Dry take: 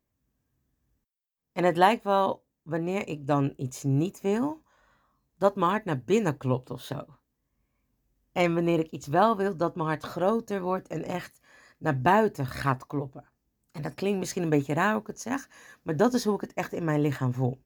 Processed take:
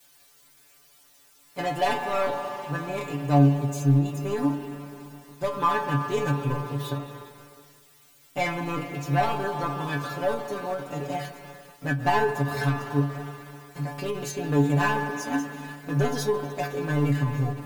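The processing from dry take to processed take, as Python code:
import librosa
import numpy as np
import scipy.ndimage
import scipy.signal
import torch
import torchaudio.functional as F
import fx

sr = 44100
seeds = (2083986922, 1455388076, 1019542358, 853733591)

p1 = fx.rev_spring(x, sr, rt60_s=4.0, pass_ms=(34, 41, 49), chirp_ms=20, drr_db=7.5)
p2 = fx.leveller(p1, sr, passes=3)
p3 = fx.quant_dither(p2, sr, seeds[0], bits=6, dither='triangular')
p4 = p2 + (p3 * librosa.db_to_amplitude(-10.0))
p5 = fx.stiff_resonator(p4, sr, f0_hz=140.0, decay_s=0.33, stiffness=0.002)
y = fx.end_taper(p5, sr, db_per_s=120.0)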